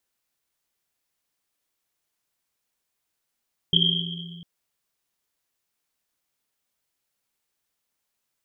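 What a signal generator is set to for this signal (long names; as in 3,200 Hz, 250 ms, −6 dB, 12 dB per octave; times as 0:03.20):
drum after Risset length 0.70 s, pitch 170 Hz, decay 2.62 s, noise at 3,200 Hz, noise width 220 Hz, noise 60%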